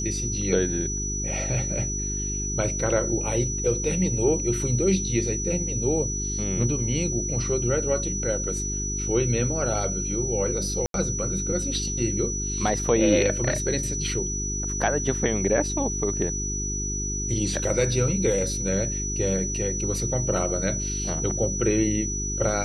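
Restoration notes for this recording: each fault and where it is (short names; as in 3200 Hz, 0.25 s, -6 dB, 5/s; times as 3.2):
hum 50 Hz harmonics 8 -31 dBFS
tone 5900 Hz -29 dBFS
10.86–10.94 gap 82 ms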